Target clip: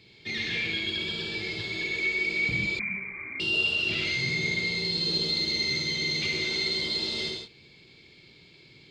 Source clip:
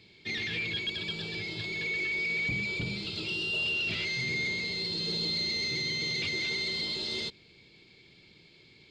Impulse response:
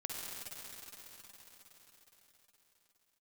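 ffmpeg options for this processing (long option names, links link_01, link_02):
-filter_complex "[1:a]atrim=start_sample=2205,afade=type=out:start_time=0.23:duration=0.01,atrim=end_sample=10584[link_01];[0:a][link_01]afir=irnorm=-1:irlink=0,asettb=1/sr,asplit=3[link_02][link_03][link_04];[link_02]atrim=end=2.794[link_05];[link_03]atrim=start=2.79:end=3.4,asetpts=PTS-STARTPTS,afade=type=in:duration=0.004:curve=qsin,afade=type=out:start_time=0.606:duration=0.004:curve=qsin,lowpass=frequency=2100:width_type=q:width=0.5098,lowpass=frequency=2100:width_type=q:width=0.6013,lowpass=frequency=2100:width_type=q:width=0.9,lowpass=frequency=2100:width_type=q:width=2.563,afreqshift=-2500[link_06];[link_04]atrim=start=3.396[link_07];[link_05][link_06]acrossfade=duration=0.004:curve1=hsin:curve2=qsin[link_08];[link_08][link_07]acrossfade=duration=0.004:curve1=qsin:curve2=hsin,volume=5dB"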